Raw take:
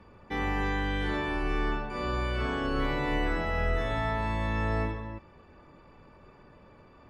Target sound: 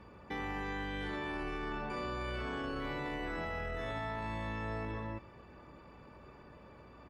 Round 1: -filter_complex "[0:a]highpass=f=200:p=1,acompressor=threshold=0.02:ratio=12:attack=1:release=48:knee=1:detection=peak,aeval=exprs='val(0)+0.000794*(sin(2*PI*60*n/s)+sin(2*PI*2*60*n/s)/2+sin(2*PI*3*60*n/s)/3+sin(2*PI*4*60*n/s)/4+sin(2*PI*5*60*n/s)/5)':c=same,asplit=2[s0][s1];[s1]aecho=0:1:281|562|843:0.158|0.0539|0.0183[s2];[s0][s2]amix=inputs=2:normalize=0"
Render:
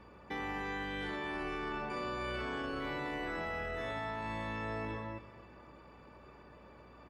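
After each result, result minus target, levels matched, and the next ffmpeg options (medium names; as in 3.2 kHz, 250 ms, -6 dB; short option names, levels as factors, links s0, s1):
echo-to-direct +9 dB; 125 Hz band -3.5 dB
-filter_complex "[0:a]highpass=f=200:p=1,acompressor=threshold=0.02:ratio=12:attack=1:release=48:knee=1:detection=peak,aeval=exprs='val(0)+0.000794*(sin(2*PI*60*n/s)+sin(2*PI*2*60*n/s)/2+sin(2*PI*3*60*n/s)/3+sin(2*PI*4*60*n/s)/4+sin(2*PI*5*60*n/s)/5)':c=same,asplit=2[s0][s1];[s1]aecho=0:1:281|562:0.0562|0.0191[s2];[s0][s2]amix=inputs=2:normalize=0"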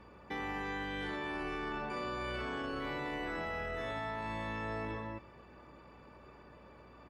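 125 Hz band -3.5 dB
-filter_complex "[0:a]highpass=f=76:p=1,acompressor=threshold=0.02:ratio=12:attack=1:release=48:knee=1:detection=peak,aeval=exprs='val(0)+0.000794*(sin(2*PI*60*n/s)+sin(2*PI*2*60*n/s)/2+sin(2*PI*3*60*n/s)/3+sin(2*PI*4*60*n/s)/4+sin(2*PI*5*60*n/s)/5)':c=same,asplit=2[s0][s1];[s1]aecho=0:1:281|562:0.0562|0.0191[s2];[s0][s2]amix=inputs=2:normalize=0"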